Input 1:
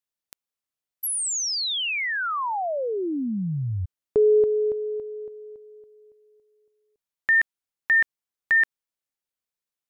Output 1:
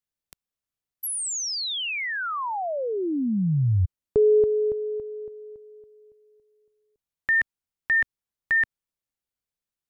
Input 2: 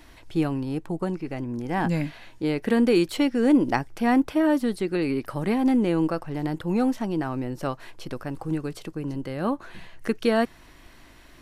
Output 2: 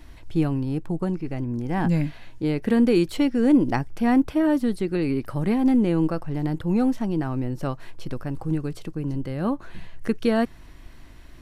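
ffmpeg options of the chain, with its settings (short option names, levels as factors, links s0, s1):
-af "lowshelf=f=200:g=11.5,volume=0.75"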